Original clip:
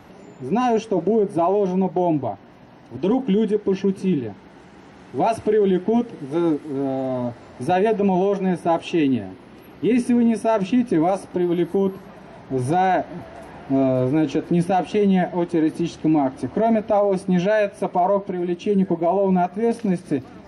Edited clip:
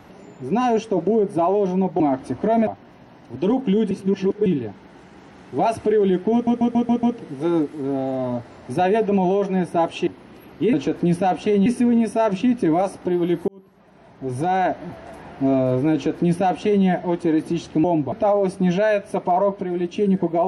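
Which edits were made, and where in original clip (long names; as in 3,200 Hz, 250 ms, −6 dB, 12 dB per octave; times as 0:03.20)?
0:02.00–0:02.28: swap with 0:16.13–0:16.80
0:03.52–0:04.07: reverse
0:05.94: stutter 0.14 s, 6 plays
0:08.98–0:09.29: remove
0:11.77–0:13.07: fade in
0:14.21–0:15.14: duplicate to 0:09.95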